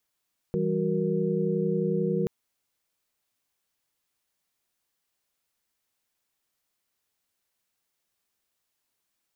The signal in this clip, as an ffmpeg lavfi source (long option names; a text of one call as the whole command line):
ffmpeg -f lavfi -i "aevalsrc='0.0355*(sin(2*PI*164.81*t)+sin(2*PI*196*t)+sin(2*PI*369.99*t)+sin(2*PI*466.16*t))':duration=1.73:sample_rate=44100" out.wav